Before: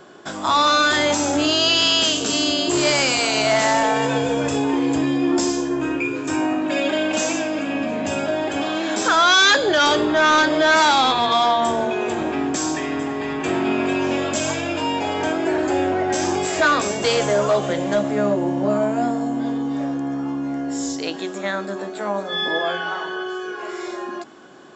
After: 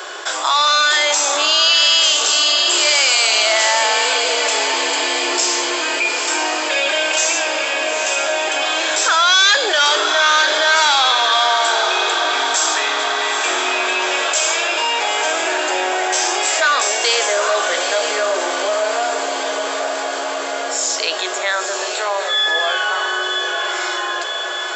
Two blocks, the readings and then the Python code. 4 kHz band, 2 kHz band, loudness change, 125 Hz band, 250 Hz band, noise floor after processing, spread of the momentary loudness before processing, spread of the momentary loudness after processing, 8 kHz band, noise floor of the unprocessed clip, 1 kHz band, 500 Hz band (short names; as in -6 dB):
+7.5 dB, +5.5 dB, +4.0 dB, under -35 dB, -12.5 dB, -23 dBFS, 11 LU, 9 LU, +9.5 dB, -31 dBFS, +3.0 dB, 0.0 dB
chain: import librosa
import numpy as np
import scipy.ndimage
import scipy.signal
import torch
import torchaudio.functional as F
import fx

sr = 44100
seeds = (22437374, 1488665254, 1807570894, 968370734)

p1 = scipy.signal.sosfilt(scipy.signal.cheby2(4, 40, 200.0, 'highpass', fs=sr, output='sos'), x)
p2 = fx.tilt_shelf(p1, sr, db=-7.0, hz=900.0)
p3 = p2 + fx.echo_diffused(p2, sr, ms=899, feedback_pct=63, wet_db=-9.0, dry=0)
p4 = fx.env_flatten(p3, sr, amount_pct=50)
y = p4 * librosa.db_to_amplitude(-3.0)